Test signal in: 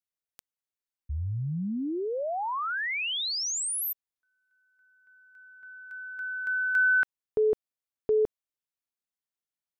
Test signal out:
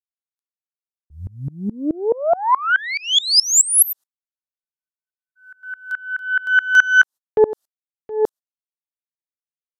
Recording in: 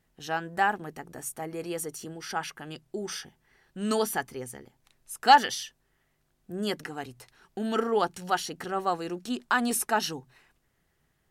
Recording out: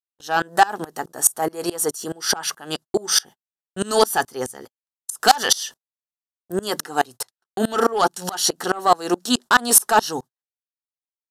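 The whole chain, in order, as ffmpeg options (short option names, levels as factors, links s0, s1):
-af "aeval=exprs='0.447*(cos(1*acos(clip(val(0)/0.447,-1,1)))-cos(1*PI/2))+0.178*(cos(2*acos(clip(val(0)/0.447,-1,1)))-cos(2*PI/2))+0.0178*(cos(6*acos(clip(val(0)/0.447,-1,1)))-cos(6*PI/2))+0.0447*(cos(8*acos(clip(val(0)/0.447,-1,1)))-cos(8*PI/2))':c=same,highpass=f=1000:p=1,equalizer=f=2300:t=o:w=0.7:g=-15,acompressor=threshold=0.0224:ratio=3:attack=21:release=46:knee=6:detection=rms,agate=range=0.00126:threshold=0.00126:ratio=16:release=193:detection=peak,apsyclip=28.2,aresample=32000,aresample=44100,aeval=exprs='val(0)*pow(10,-26*if(lt(mod(-4.7*n/s,1),2*abs(-4.7)/1000),1-mod(-4.7*n/s,1)/(2*abs(-4.7)/1000),(mod(-4.7*n/s,1)-2*abs(-4.7)/1000)/(1-2*abs(-4.7)/1000))/20)':c=same,volume=0.75"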